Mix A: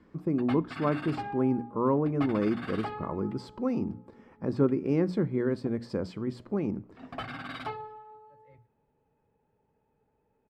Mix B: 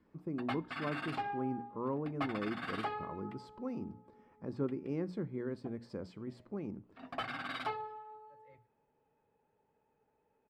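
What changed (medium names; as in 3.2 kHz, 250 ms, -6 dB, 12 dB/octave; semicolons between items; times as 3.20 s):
speech -11.0 dB; background: add bass shelf 240 Hz -11 dB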